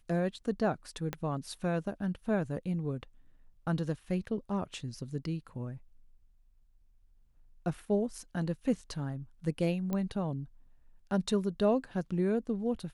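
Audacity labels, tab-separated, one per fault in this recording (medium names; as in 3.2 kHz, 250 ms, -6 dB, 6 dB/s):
1.130000	1.130000	pop -20 dBFS
9.930000	9.930000	pop -21 dBFS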